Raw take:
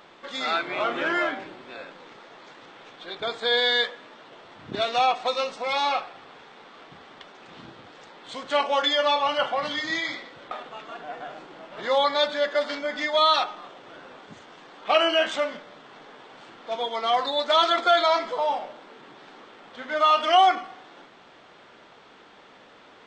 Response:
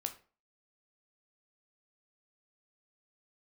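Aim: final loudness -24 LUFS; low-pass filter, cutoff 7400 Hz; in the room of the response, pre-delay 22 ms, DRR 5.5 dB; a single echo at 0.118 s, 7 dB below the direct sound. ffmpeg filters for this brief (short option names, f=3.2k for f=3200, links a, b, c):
-filter_complex "[0:a]lowpass=7.4k,aecho=1:1:118:0.447,asplit=2[a][b];[1:a]atrim=start_sample=2205,adelay=22[c];[b][c]afir=irnorm=-1:irlink=0,volume=-5dB[d];[a][d]amix=inputs=2:normalize=0,volume=-2.5dB"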